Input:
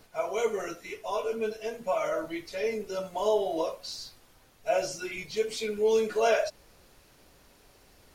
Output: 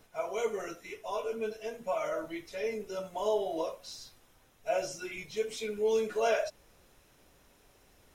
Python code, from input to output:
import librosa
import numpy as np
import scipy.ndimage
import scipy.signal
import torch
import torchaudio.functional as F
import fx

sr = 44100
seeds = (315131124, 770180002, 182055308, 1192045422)

y = fx.notch(x, sr, hz=4500.0, q=7.3)
y = F.gain(torch.from_numpy(y), -4.0).numpy()